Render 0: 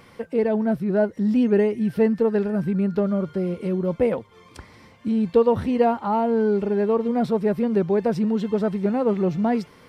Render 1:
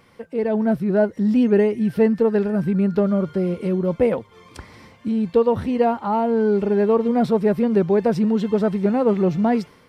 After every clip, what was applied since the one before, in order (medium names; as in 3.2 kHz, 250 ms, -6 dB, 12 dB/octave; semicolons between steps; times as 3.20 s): level rider gain up to 10 dB; trim -5 dB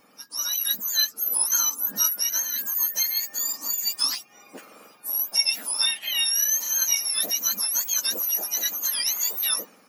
spectrum inverted on a logarithmic axis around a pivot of 1.6 kHz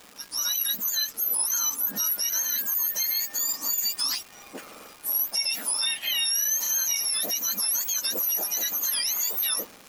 crackle 540 per s -38 dBFS; peak limiter -20 dBFS, peak gain reduction 10 dB; trim +2.5 dB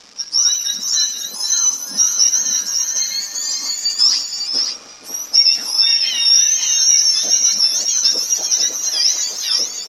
resonant low-pass 5.5 kHz, resonance Q 5.1; multi-tap echo 72/156/307/471/549 ms -13/-18/-17/-10.5/-5.5 dB; trim +2 dB